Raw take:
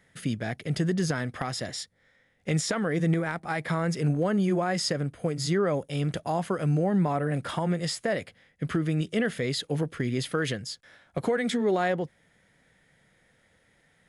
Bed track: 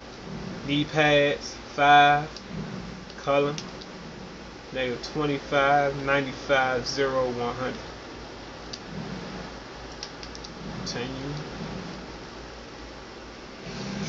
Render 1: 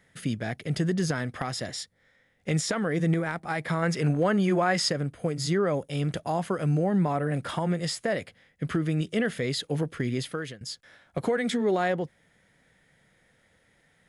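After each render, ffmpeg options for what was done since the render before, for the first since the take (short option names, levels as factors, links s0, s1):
-filter_complex "[0:a]asettb=1/sr,asplit=3[s0][s1][s2];[s0]atrim=end=3.824[s3];[s1]atrim=start=3.82:end=4.89,asetpts=PTS-STARTPTS,afade=t=in:d=0.004:c=qsin,afade=t=out:st=1.066:d=0.004:c=qsin,equalizer=f=1700:t=o:w=3:g=6[s4];[s2]atrim=start=4.886[s5];[s3][s4]acrossfade=d=0.004:c1=hsin:c2=qsin[s6];[s6][s5]acrossfade=d=0.004:c1=qsin:c2=hsin,asplit=2[s7][s8];[s7]atrim=end=10.61,asetpts=PTS-STARTPTS,afade=t=out:st=10.12:d=0.49:silence=0.133352[s9];[s8]atrim=start=10.61,asetpts=PTS-STARTPTS,afade=t=in:d=0.004:c=hsin:silence=0.133352[s10];[s9][s10]concat=n=2:v=0:a=1"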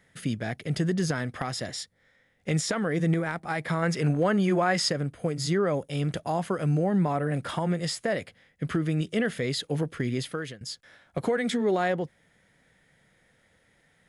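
-af anull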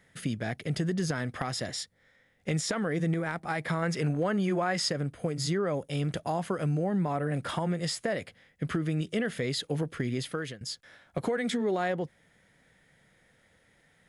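-af "acompressor=threshold=0.0398:ratio=2"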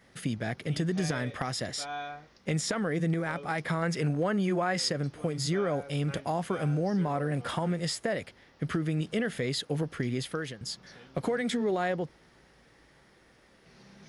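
-filter_complex "[1:a]volume=0.0841[s0];[0:a][s0]amix=inputs=2:normalize=0"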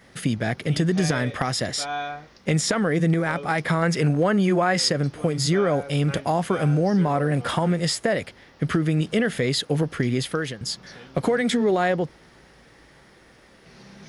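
-af "volume=2.51"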